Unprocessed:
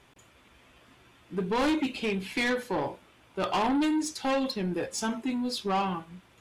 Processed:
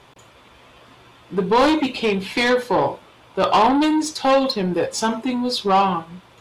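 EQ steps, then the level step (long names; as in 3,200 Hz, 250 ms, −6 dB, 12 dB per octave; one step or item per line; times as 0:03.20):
graphic EQ with 10 bands 125 Hz +5 dB, 500 Hz +6 dB, 1,000 Hz +7 dB, 4,000 Hz +6 dB
+5.0 dB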